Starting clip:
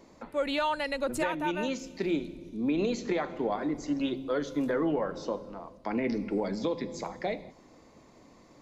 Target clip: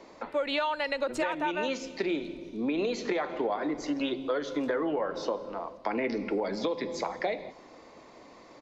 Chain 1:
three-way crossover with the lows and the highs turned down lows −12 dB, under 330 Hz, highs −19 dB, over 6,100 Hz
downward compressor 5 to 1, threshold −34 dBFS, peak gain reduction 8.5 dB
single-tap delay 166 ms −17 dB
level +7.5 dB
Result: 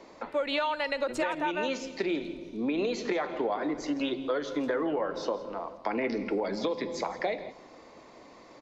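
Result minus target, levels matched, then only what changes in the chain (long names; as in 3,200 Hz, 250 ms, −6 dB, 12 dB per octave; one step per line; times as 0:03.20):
echo-to-direct +8.5 dB
change: single-tap delay 166 ms −25.5 dB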